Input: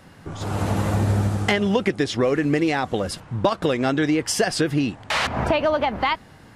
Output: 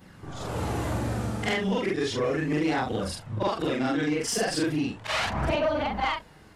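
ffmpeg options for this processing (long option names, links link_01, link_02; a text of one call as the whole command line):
ffmpeg -i in.wav -af "afftfilt=real='re':imag='-im':win_size=4096:overlap=0.75,aphaser=in_gain=1:out_gain=1:delay=4.6:decay=0.31:speed=0.35:type=triangular,asoftclip=type=tanh:threshold=-17.5dB" out.wav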